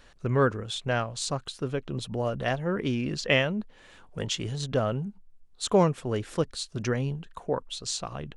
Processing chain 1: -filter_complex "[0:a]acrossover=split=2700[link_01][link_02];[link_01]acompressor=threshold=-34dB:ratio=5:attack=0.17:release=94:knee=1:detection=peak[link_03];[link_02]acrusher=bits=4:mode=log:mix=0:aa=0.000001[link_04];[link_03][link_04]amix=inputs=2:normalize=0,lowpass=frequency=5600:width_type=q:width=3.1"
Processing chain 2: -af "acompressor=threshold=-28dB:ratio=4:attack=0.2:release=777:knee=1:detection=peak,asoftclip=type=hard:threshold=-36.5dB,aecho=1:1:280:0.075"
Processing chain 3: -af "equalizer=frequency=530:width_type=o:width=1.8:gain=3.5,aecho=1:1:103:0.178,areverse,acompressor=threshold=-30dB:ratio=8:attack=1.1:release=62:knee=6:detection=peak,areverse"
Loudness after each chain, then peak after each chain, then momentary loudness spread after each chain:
−32.0, −41.0, −36.0 LKFS; −9.0, −36.0, −21.5 dBFS; 15, 5, 5 LU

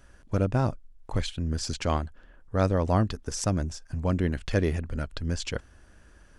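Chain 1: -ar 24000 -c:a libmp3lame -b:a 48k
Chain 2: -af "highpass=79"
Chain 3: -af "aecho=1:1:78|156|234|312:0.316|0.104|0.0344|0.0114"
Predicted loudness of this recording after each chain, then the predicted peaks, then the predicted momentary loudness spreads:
−29.5, −29.5, −28.5 LKFS; −11.0, −9.5, −11.0 dBFS; 9, 9, 9 LU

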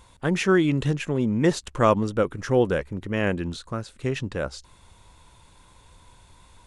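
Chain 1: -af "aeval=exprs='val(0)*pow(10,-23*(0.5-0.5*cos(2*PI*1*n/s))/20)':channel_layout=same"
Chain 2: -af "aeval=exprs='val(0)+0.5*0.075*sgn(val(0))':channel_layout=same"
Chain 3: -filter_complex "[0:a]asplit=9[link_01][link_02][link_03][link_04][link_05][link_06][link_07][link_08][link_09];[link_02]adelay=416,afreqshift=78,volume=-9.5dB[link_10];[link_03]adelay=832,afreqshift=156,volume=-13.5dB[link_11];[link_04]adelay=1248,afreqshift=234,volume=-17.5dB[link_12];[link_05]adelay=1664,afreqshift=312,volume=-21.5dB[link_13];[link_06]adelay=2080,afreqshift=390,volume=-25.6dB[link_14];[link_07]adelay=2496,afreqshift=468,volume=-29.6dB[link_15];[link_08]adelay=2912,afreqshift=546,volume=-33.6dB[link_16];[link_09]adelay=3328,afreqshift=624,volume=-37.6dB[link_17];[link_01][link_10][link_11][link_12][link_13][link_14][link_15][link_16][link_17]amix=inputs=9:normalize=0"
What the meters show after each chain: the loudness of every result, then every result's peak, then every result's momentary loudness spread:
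−31.0, −22.5, −24.0 LKFS; −8.5, −5.5, −5.5 dBFS; 20, 10, 17 LU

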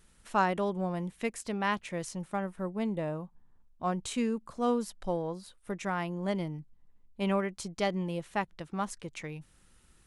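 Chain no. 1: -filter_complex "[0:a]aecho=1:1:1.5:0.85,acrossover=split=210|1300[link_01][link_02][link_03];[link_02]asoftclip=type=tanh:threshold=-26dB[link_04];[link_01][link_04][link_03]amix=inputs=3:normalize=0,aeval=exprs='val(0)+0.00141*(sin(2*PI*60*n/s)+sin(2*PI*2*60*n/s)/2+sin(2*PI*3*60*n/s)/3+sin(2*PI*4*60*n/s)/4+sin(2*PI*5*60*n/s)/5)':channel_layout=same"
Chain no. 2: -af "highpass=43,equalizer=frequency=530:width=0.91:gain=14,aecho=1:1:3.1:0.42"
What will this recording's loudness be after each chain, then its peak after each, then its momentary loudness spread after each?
−33.5, −25.0 LKFS; −17.5, −5.5 dBFS; 9, 12 LU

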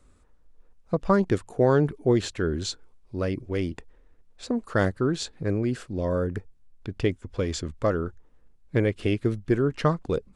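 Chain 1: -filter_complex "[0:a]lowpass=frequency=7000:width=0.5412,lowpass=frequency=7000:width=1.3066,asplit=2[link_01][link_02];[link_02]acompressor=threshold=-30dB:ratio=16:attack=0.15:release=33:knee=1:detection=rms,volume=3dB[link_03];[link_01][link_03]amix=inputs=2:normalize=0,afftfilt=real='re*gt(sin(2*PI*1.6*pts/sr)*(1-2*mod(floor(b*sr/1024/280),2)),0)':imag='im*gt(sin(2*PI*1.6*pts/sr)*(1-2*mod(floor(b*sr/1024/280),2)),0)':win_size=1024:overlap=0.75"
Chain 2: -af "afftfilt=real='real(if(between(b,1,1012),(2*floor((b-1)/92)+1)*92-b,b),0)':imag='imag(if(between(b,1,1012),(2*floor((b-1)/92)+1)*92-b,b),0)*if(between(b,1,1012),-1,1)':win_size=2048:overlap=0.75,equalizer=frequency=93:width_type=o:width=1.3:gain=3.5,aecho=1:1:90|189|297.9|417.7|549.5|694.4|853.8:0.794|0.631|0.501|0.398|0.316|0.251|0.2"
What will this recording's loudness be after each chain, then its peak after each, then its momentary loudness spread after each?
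−27.5, −20.5 LKFS; −11.0, −4.5 dBFS; 9, 11 LU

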